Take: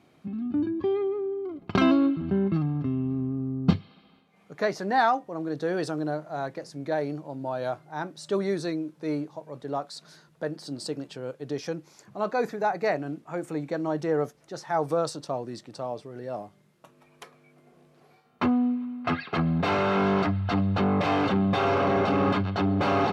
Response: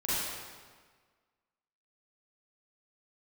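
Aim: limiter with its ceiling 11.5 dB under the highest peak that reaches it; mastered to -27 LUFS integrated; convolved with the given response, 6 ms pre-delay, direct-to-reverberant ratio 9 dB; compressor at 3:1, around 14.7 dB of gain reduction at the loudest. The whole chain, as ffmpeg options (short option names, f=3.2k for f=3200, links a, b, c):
-filter_complex "[0:a]acompressor=threshold=-36dB:ratio=3,alimiter=level_in=4.5dB:limit=-24dB:level=0:latency=1,volume=-4.5dB,asplit=2[a][b];[1:a]atrim=start_sample=2205,adelay=6[c];[b][c]afir=irnorm=-1:irlink=0,volume=-17.5dB[d];[a][d]amix=inputs=2:normalize=0,volume=11dB"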